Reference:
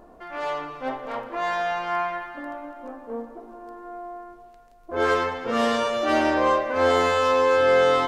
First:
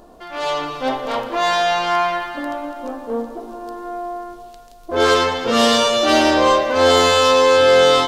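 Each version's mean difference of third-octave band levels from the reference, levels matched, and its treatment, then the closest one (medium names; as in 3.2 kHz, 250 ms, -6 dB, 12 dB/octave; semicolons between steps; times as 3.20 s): 3.5 dB: resonant high shelf 2.7 kHz +7.5 dB, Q 1.5; level rider gain up to 6 dB; in parallel at -4.5 dB: saturation -21 dBFS, distortion -7 dB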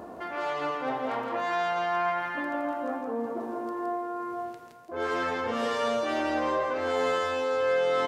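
6.0 dB: high-pass 82 Hz 24 dB/octave; reverse; compression 4:1, threshold -38 dBFS, peak gain reduction 18.5 dB; reverse; delay 166 ms -4 dB; trim +8 dB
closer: first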